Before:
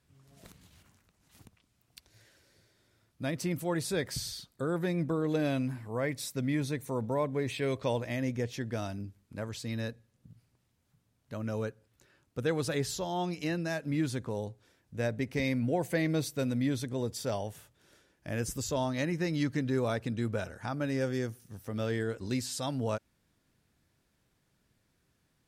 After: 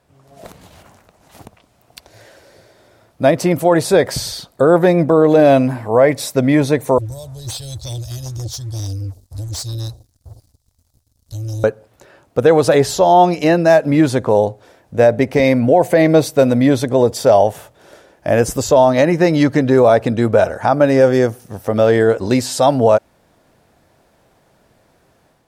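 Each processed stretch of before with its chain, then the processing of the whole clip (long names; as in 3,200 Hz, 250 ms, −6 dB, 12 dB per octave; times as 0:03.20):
0:06.98–0:11.64: inverse Chebyshev band-stop filter 170–2,300 Hz + low-shelf EQ 470 Hz +6 dB + leveller curve on the samples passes 2
whole clip: parametric band 670 Hz +14.5 dB 1.6 octaves; automatic gain control gain up to 6 dB; boost into a limiter +8.5 dB; level −1 dB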